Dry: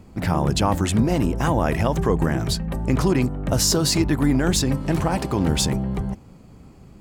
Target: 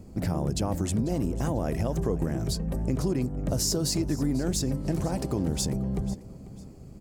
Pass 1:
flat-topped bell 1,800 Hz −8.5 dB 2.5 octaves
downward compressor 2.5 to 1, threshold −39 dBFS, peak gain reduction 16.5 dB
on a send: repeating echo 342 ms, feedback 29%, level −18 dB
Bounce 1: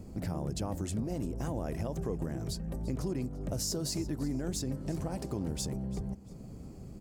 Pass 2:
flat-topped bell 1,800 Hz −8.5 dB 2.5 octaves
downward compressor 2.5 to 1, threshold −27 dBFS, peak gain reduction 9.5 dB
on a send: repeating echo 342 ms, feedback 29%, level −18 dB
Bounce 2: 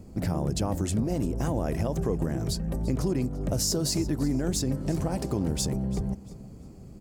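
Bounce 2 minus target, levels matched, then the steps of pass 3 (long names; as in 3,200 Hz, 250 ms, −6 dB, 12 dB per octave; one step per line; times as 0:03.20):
echo 152 ms early
flat-topped bell 1,800 Hz −8.5 dB 2.5 octaves
downward compressor 2.5 to 1, threshold −27 dBFS, peak gain reduction 9.5 dB
on a send: repeating echo 494 ms, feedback 29%, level −18 dB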